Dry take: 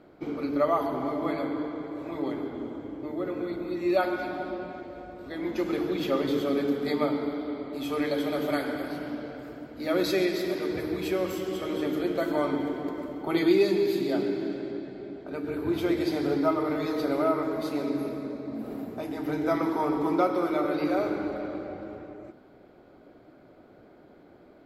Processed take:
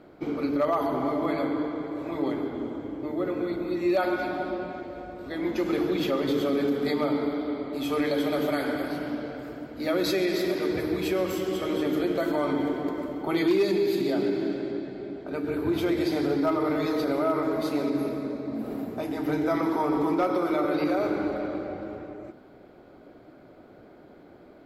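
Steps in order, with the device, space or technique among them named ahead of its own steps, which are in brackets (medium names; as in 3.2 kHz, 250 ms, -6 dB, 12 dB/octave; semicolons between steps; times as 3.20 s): clipper into limiter (hard clipper -16 dBFS, distortion -29 dB; peak limiter -20 dBFS, peak gain reduction 4 dB); trim +3 dB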